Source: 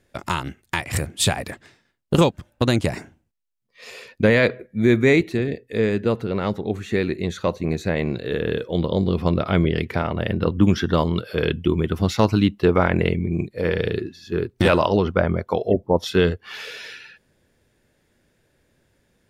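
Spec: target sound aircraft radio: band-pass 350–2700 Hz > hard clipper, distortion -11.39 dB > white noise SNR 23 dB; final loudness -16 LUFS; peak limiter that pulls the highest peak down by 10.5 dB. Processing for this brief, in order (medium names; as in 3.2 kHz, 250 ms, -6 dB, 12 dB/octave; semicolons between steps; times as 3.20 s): peak limiter -15.5 dBFS; band-pass 350–2700 Hz; hard clipper -25.5 dBFS; white noise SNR 23 dB; trim +17 dB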